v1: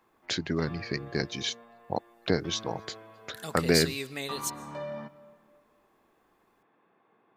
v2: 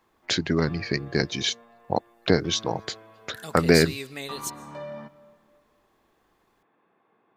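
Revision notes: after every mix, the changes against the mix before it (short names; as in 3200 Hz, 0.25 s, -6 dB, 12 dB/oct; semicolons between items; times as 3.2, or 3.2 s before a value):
first voice +6.0 dB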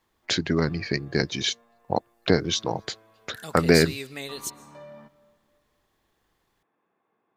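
background -7.5 dB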